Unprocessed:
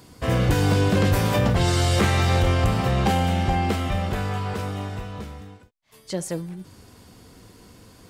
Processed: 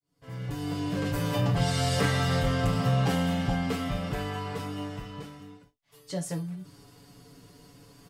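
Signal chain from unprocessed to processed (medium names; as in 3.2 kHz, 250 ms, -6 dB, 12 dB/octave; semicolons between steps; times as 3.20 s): fade-in on the opening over 1.88 s; comb 7 ms, depth 78%; gated-style reverb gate 90 ms falling, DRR 5.5 dB; trim -8 dB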